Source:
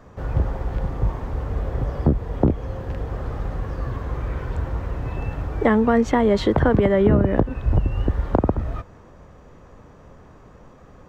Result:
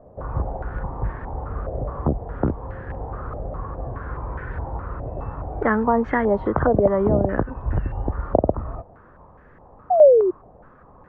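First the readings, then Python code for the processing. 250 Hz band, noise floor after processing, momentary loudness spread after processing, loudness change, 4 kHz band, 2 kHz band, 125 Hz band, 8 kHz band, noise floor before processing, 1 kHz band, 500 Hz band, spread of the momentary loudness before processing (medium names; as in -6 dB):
-3.5 dB, -49 dBFS, 14 LU, -0.5 dB, under -20 dB, 0.0 dB, -4.5 dB, no reading, -47 dBFS, +2.5 dB, +3.5 dB, 12 LU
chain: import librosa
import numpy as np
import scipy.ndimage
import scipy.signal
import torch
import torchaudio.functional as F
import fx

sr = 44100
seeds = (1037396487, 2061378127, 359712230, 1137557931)

y = fx.spec_paint(x, sr, seeds[0], shape='fall', start_s=9.9, length_s=0.41, low_hz=350.0, high_hz=760.0, level_db=-15.0)
y = fx.filter_held_lowpass(y, sr, hz=4.8, low_hz=640.0, high_hz=1700.0)
y = y * librosa.db_to_amplitude(-4.5)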